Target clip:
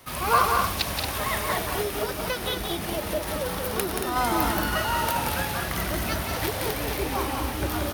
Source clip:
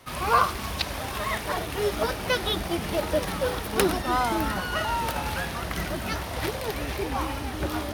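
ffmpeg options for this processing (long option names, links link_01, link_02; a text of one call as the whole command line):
ffmpeg -i in.wav -filter_complex "[0:a]asplit=3[link_01][link_02][link_03];[link_01]afade=type=out:start_time=1.81:duration=0.02[link_04];[link_02]acompressor=threshold=-28dB:ratio=3,afade=type=in:start_time=1.81:duration=0.02,afade=type=out:start_time=4.15:duration=0.02[link_05];[link_03]afade=type=in:start_time=4.15:duration=0.02[link_06];[link_04][link_05][link_06]amix=inputs=3:normalize=0,highshelf=frequency=11000:gain=12,aecho=1:1:178|228:0.562|0.447" out.wav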